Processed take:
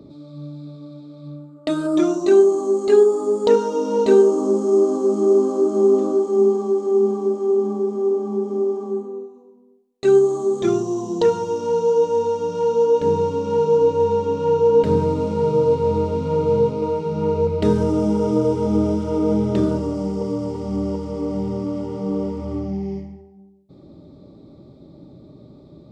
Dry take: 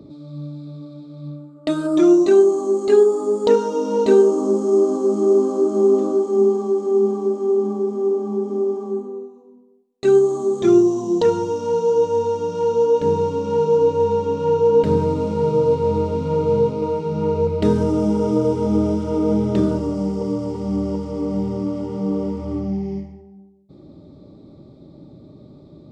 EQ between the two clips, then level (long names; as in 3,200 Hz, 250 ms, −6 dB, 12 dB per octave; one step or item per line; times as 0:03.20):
mains-hum notches 50/100/150/200/250/300/350 Hz
0.0 dB